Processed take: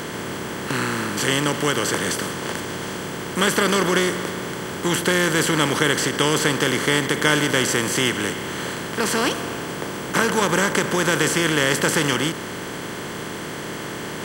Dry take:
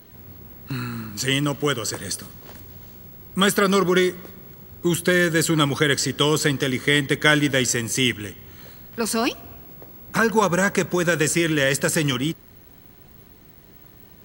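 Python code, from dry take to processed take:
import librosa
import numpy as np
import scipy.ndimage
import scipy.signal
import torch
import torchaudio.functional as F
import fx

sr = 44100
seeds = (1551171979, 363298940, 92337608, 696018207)

y = fx.bin_compress(x, sr, power=0.4)
y = fx.end_taper(y, sr, db_per_s=160.0)
y = y * 10.0 ** (-5.5 / 20.0)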